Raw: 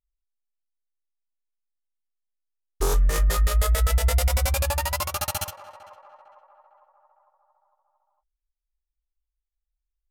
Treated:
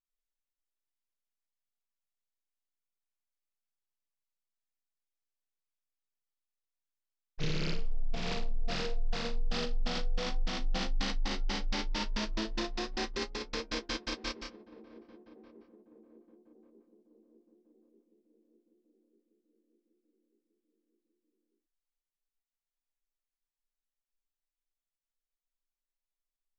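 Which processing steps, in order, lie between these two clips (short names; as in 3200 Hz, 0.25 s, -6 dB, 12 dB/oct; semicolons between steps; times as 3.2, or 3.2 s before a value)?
wide varispeed 0.38×; gain -9 dB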